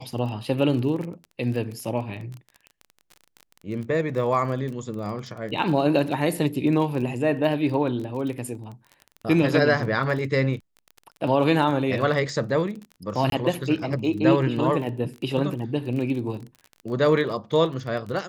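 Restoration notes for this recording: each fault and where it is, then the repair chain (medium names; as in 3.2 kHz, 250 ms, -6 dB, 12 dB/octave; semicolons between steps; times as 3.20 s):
crackle 26 per s -32 dBFS
13.30–13.32 s: dropout 22 ms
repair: de-click; interpolate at 13.30 s, 22 ms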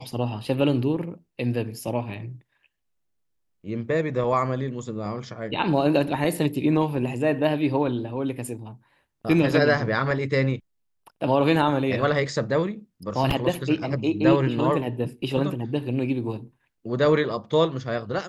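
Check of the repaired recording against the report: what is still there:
nothing left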